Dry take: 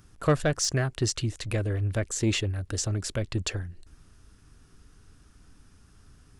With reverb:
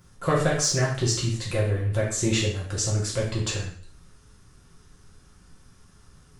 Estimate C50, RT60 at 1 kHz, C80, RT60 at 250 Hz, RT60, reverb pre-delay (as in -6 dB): 4.5 dB, 0.50 s, 8.5 dB, 0.50 s, 0.50 s, 3 ms